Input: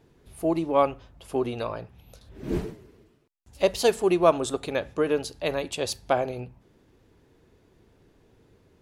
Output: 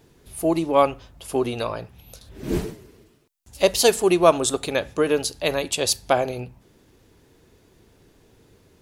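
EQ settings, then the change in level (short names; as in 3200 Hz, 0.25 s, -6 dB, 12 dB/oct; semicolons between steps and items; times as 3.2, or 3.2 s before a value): high shelf 3900 Hz +10 dB; +3.5 dB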